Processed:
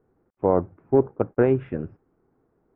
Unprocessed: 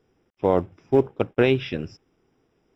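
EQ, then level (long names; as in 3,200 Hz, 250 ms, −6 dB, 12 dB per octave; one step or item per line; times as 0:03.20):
low-pass filter 1,500 Hz 24 dB per octave
0.0 dB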